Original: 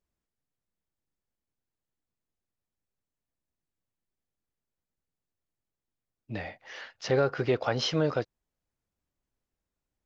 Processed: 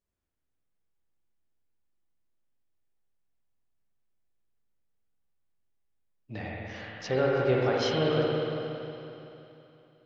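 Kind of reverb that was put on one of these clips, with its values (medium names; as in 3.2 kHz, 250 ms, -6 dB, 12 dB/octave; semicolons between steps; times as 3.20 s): spring tank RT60 3.1 s, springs 46/57 ms, chirp 60 ms, DRR -4 dB; trim -4 dB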